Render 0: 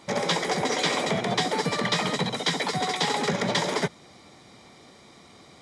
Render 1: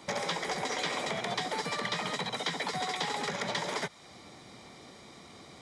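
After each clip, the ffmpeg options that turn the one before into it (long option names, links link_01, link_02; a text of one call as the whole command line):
ffmpeg -i in.wav -filter_complex "[0:a]acrossover=split=100|620|3000[link_01][link_02][link_03][link_04];[link_01]acompressor=threshold=-57dB:ratio=4[link_05];[link_02]acompressor=threshold=-42dB:ratio=4[link_06];[link_03]acompressor=threshold=-34dB:ratio=4[link_07];[link_04]acompressor=threshold=-40dB:ratio=4[link_08];[link_05][link_06][link_07][link_08]amix=inputs=4:normalize=0" out.wav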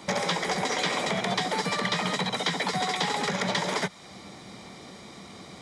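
ffmpeg -i in.wav -af "equalizer=frequency=190:width_type=o:width=0.26:gain=7,volume=5.5dB" out.wav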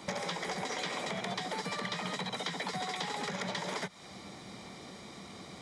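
ffmpeg -i in.wav -af "acompressor=threshold=-31dB:ratio=4,volume=-3dB" out.wav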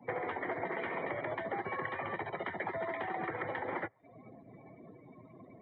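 ffmpeg -i in.wav -af "afftdn=noise_reduction=27:noise_floor=-44,highpass=frequency=260:width_type=q:width=0.5412,highpass=frequency=260:width_type=q:width=1.307,lowpass=frequency=2400:width_type=q:width=0.5176,lowpass=frequency=2400:width_type=q:width=0.7071,lowpass=frequency=2400:width_type=q:width=1.932,afreqshift=-78,volume=1.5dB" out.wav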